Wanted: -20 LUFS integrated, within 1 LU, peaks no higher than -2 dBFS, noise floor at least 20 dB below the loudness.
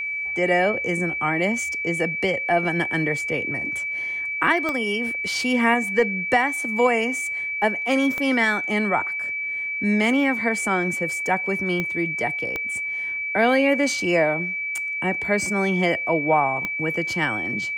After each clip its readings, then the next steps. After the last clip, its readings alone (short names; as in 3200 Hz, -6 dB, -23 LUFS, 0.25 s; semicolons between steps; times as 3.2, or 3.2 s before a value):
clicks 5; steady tone 2300 Hz; tone level -25 dBFS; loudness -22.0 LUFS; peak -7.0 dBFS; loudness target -20.0 LUFS
-> de-click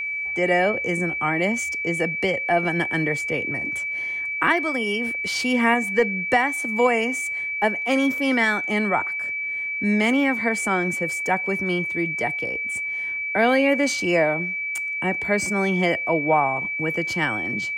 clicks 1; steady tone 2300 Hz; tone level -25 dBFS
-> notch 2300 Hz, Q 30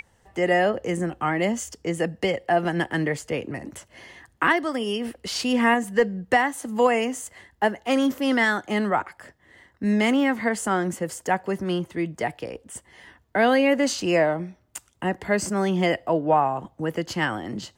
steady tone none; loudness -24.0 LUFS; peak -8.0 dBFS; loudness target -20.0 LUFS
-> gain +4 dB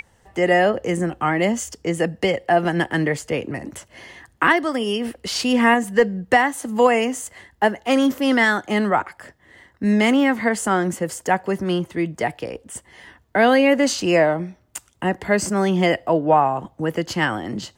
loudness -20.0 LUFS; peak -4.0 dBFS; noise floor -59 dBFS